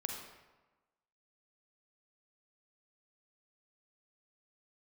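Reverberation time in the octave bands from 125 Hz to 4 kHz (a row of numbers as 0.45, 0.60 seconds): 1.1, 1.2, 1.2, 1.2, 1.0, 0.75 seconds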